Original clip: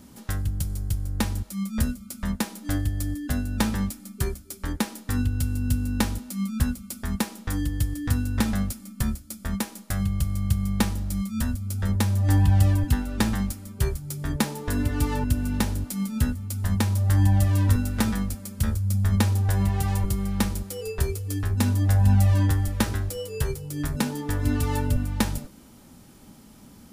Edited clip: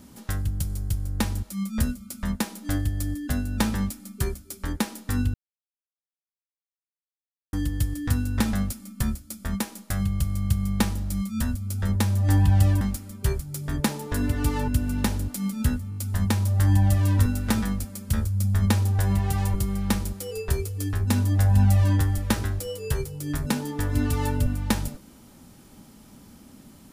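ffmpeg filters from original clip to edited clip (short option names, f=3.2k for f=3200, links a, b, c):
-filter_complex "[0:a]asplit=7[a][b][c][d][e][f][g];[a]atrim=end=5.34,asetpts=PTS-STARTPTS,afade=t=out:st=5.336:d=0.004:c=hsin[h];[b]atrim=start=5.34:end=7.53,asetpts=PTS-STARTPTS,volume=0[i];[c]atrim=start=7.53:end=12.812,asetpts=PTS-STARTPTS,afade=t=in:d=0.004:c=hsin[j];[d]atrim=start=13.368:end=16.482[k];[e]atrim=start=16.458:end=16.482[l];[f]atrim=start=16.458:end=16.482[m];[g]atrim=start=16.458[n];[h][i][j]concat=n=3:v=0:a=1[o];[o][k]acrossfade=d=0.004:c1=hsin:c2=hsin[p];[p][l]acrossfade=d=0.004:c1=hsin:c2=hsin[q];[q][m]acrossfade=d=0.004:c1=hsin:c2=hsin[r];[r][n]acrossfade=d=0.004:c1=hsin:c2=hsin"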